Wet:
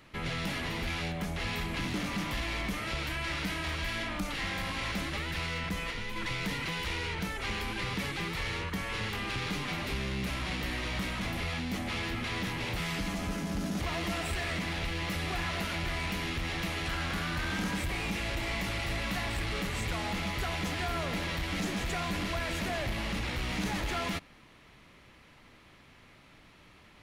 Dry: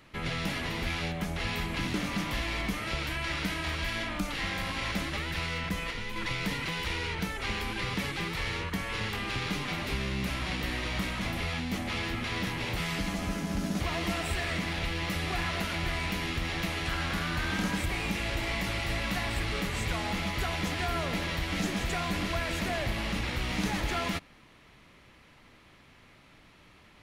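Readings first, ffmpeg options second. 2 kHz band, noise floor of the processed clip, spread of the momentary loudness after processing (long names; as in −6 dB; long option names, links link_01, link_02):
−1.5 dB, −57 dBFS, 1 LU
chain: -af "asoftclip=type=tanh:threshold=-26dB"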